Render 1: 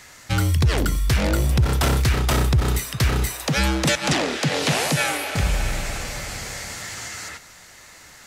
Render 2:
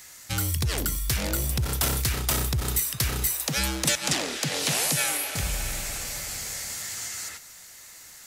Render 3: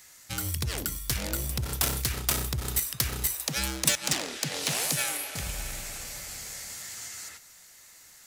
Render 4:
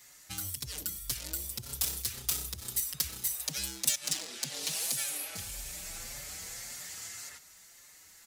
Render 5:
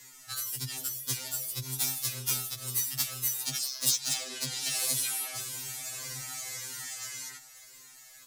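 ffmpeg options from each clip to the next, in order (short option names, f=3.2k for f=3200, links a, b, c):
-af "aemphasis=mode=production:type=75kf,volume=-9dB"
-af "bandreject=f=50:t=h:w=6,bandreject=f=100:t=h:w=6,aeval=exprs='0.355*(cos(1*acos(clip(val(0)/0.355,-1,1)))-cos(1*PI/2))+0.0891*(cos(3*acos(clip(val(0)/0.355,-1,1)))-cos(3*PI/2))':c=same,volume=6dB"
-filter_complex "[0:a]acrossover=split=3300[a][b];[a]acompressor=threshold=-41dB:ratio=6[c];[c][b]amix=inputs=2:normalize=0,asplit=2[d][e];[e]adelay=5.3,afreqshift=1.8[f];[d][f]amix=inputs=2:normalize=1"
-filter_complex "[0:a]asplit=2[a][b];[b]aeval=exprs='(mod(18.8*val(0)+1,2)-1)/18.8':c=same,volume=-12dB[c];[a][c]amix=inputs=2:normalize=0,afftfilt=real='re*2.45*eq(mod(b,6),0)':imag='im*2.45*eq(mod(b,6),0)':win_size=2048:overlap=0.75,volume=4dB"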